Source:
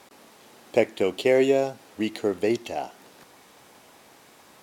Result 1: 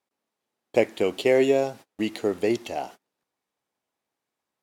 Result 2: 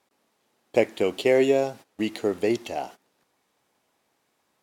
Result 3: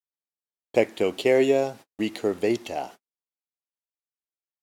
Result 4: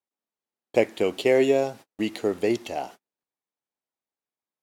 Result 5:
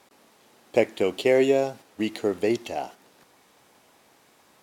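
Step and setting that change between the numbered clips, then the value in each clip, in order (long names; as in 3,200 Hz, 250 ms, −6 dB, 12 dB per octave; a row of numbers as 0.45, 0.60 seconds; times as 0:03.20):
noise gate, range: −32, −19, −58, −44, −6 decibels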